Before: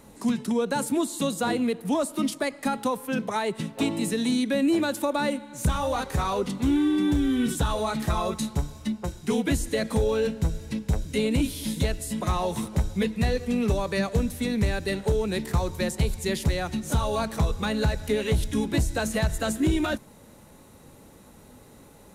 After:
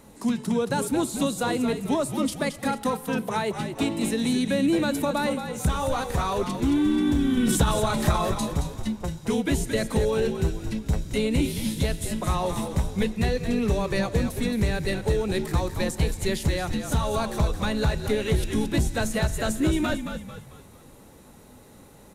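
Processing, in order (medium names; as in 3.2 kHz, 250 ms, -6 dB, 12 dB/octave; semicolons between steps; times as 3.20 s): 7.37–8.30 s: transient shaper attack +6 dB, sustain +10 dB; on a send: frequency-shifting echo 222 ms, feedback 41%, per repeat -55 Hz, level -8 dB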